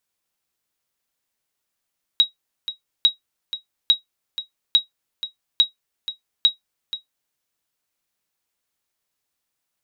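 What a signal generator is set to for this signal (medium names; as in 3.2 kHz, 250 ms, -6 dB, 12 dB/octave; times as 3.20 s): sonar ping 3.82 kHz, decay 0.13 s, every 0.85 s, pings 6, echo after 0.48 s, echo -13 dB -5.5 dBFS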